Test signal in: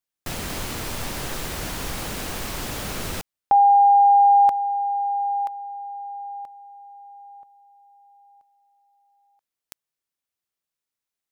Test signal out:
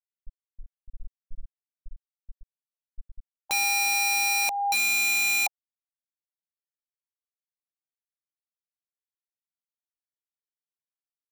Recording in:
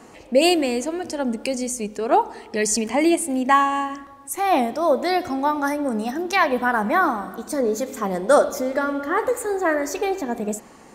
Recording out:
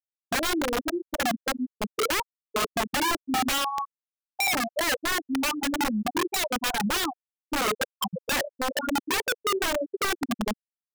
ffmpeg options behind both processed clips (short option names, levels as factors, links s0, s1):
-af "afftfilt=real='re*gte(hypot(re,im),0.501)':imag='im*gte(hypot(re,im),0.501)':win_size=1024:overlap=0.75,acompressor=threshold=0.0501:ratio=8:attack=6.6:release=386:knee=6:detection=rms,aeval=exprs='(mod(21.1*val(0)+1,2)-1)/21.1':c=same,volume=1.88"